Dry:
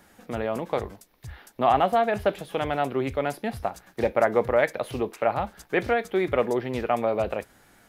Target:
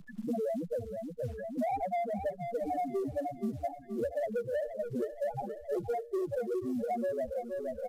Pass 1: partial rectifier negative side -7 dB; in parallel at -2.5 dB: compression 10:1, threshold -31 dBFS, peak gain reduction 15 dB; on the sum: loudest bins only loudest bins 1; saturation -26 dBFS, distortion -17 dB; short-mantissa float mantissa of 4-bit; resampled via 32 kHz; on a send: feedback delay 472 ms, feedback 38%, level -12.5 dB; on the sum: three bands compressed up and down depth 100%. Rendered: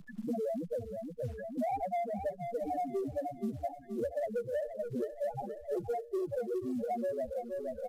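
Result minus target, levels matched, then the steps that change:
compression: peak gain reduction +8.5 dB
change: compression 10:1, threshold -21.5 dBFS, peak gain reduction 6.5 dB

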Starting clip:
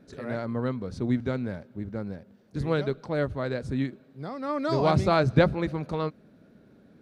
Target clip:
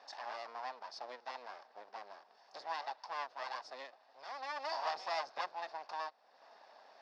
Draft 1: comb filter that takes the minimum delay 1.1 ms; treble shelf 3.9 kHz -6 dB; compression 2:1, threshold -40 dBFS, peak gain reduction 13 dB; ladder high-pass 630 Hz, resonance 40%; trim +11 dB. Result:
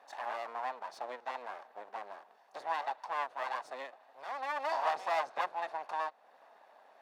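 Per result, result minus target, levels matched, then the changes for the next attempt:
4 kHz band -7.5 dB; compression: peak gain reduction -6 dB
add after comb filter that takes the minimum: resonant low-pass 5.1 kHz, resonance Q 6.5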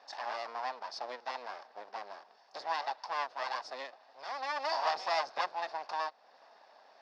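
compression: peak gain reduction -6 dB
change: compression 2:1, threshold -52 dBFS, peak gain reduction 19 dB

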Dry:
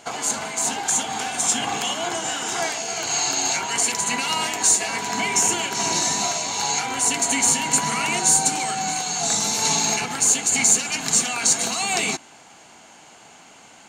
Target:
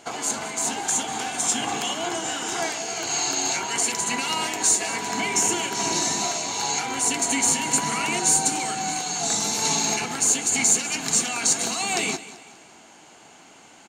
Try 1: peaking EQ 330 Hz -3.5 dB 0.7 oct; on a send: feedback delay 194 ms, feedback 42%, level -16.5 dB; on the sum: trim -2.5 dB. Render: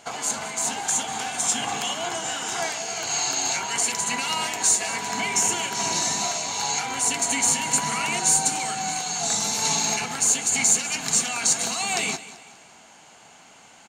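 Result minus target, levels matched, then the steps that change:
250 Hz band -4.0 dB
change: peaking EQ 330 Hz +5 dB 0.7 oct

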